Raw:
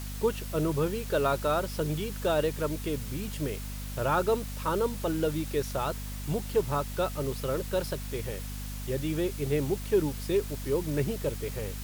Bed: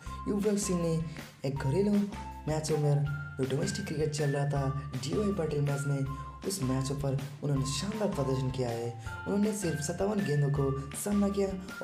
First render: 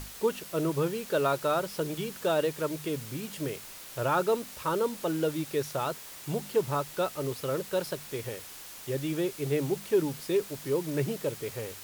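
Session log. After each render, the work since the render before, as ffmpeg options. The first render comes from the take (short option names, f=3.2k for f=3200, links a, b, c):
-af "bandreject=f=50:t=h:w=6,bandreject=f=100:t=h:w=6,bandreject=f=150:t=h:w=6,bandreject=f=200:t=h:w=6,bandreject=f=250:t=h:w=6"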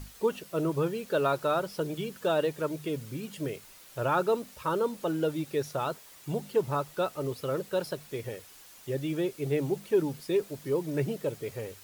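-af "afftdn=nr=8:nf=-45"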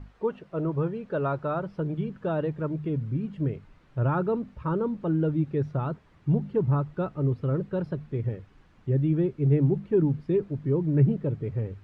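-af "lowpass=1.5k,asubboost=boost=6:cutoff=230"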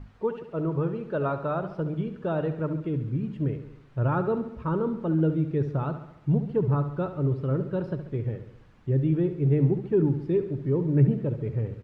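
-af "aecho=1:1:69|138|207|276|345|414:0.282|0.158|0.0884|0.0495|0.0277|0.0155"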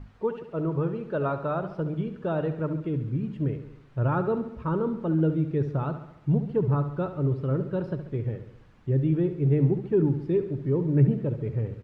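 -af anull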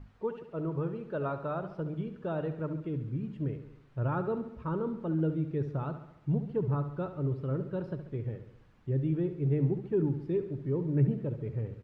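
-af "volume=-6dB"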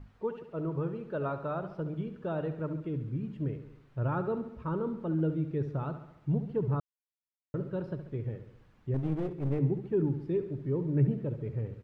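-filter_complex "[0:a]asettb=1/sr,asplit=3[a][b][c];[a]atrim=end=8.944[d];[b]atrim=start=8.94:end=9.59,asetpts=PTS-STARTPTS,afade=t=in:d=0.004:c=qsin,afade=t=out:st=0.646:d=0.004:c=qsin,aeval=exprs='clip(val(0),-1,0.0158)':c=same[e];[c]atrim=start=9.586[f];[d][e]acrossfade=d=0.004:c1=hsin:c2=qsin[g];[g][f]acrossfade=d=0.004:c1=qsin:c2=hsin,asplit=3[h][i][j];[h]atrim=end=6.8,asetpts=PTS-STARTPTS,afade=t=out:st=6.796:d=0.004:c=hsin[k];[i]atrim=start=6.8:end=7.54,asetpts=PTS-STARTPTS,volume=0[l];[j]atrim=start=7.54,asetpts=PTS-STARTPTS,afade=t=in:d=0.004:c=hsin[m];[k][l][m]concat=n=3:v=0:a=1"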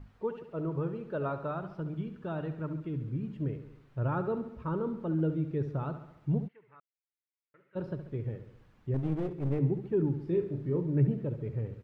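-filter_complex "[0:a]asettb=1/sr,asplit=3[a][b][c];[a]atrim=end=1.514[d];[b]atrim=start=1.51:end=3.02,asetpts=PTS-STARTPTS,afade=t=in:d=0.004:c=qsin,afade=t=out:st=1.506:d=0.004:c=qsin,equalizer=f=510:w=2:g=-6.5[e];[c]atrim=start=3.016[f];[d][e]acrossfade=d=0.004:c1=hsin:c2=qsin[g];[g][f]acrossfade=d=0.004:c1=qsin:c2=hsin,asplit=3[h][i][j];[h]afade=t=out:st=6.47:d=0.02[k];[i]bandpass=f=2.1k:t=q:w=5.2,afade=t=in:st=6.47:d=0.02,afade=t=out:st=7.75:d=0.02[l];[j]afade=t=in:st=7.75:d=0.02[m];[k][l][m]amix=inputs=3:normalize=0,asettb=1/sr,asplit=3[n][o][p];[n]atrim=end=10.234[q];[o]atrim=start=10.23:end=10.8,asetpts=PTS-STARTPTS,afade=t=in:d=0.004:c=qsin,afade=t=out:st=0.566:d=0.004:c=qsin,asplit=2[r][s];[s]adelay=35,volume=-6dB[t];[r][t]amix=inputs=2:normalize=0,atrim=end_sample=25137[u];[p]atrim=start=10.796[v];[q][u]acrossfade=d=0.004:c1=hsin:c2=qsin[w];[w][v]acrossfade=d=0.004:c1=qsin:c2=hsin"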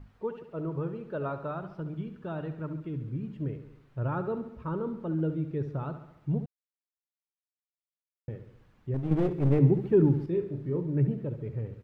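-filter_complex "[0:a]asplit=5[a][b][c][d][e];[a]atrim=end=6.46,asetpts=PTS-STARTPTS,afade=t=out:st=6.456:d=0.004:c=hsin[f];[b]atrim=start=6.46:end=8.28,asetpts=PTS-STARTPTS,volume=0[g];[c]atrim=start=8.28:end=9.112,asetpts=PTS-STARTPTS,afade=t=in:d=0.004:c=hsin[h];[d]atrim=start=9.108:end=10.262,asetpts=PTS-STARTPTS,volume=7dB[i];[e]atrim=start=10.258[j];[f][g][h]concat=n=3:v=0:a=1[k];[k][i]acrossfade=d=0.004:c1=hsin:c2=hsin[l];[l][j]acrossfade=d=0.004:c1=hsin:c2=hsin"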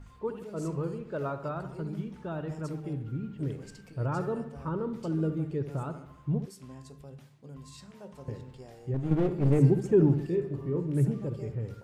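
-filter_complex "[1:a]volume=-16dB[a];[0:a][a]amix=inputs=2:normalize=0"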